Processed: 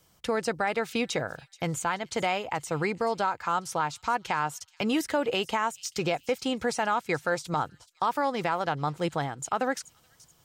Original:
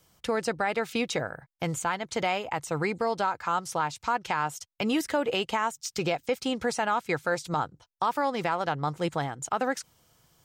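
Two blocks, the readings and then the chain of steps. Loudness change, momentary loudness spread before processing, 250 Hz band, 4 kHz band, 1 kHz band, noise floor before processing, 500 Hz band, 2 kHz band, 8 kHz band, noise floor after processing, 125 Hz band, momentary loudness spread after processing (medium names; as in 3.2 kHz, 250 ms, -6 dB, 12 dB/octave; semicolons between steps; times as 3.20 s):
0.0 dB, 5 LU, 0.0 dB, 0.0 dB, 0.0 dB, -71 dBFS, 0.0 dB, 0.0 dB, 0.0 dB, -64 dBFS, 0.0 dB, 5 LU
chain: feedback echo behind a high-pass 429 ms, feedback 36%, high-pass 4.2 kHz, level -16 dB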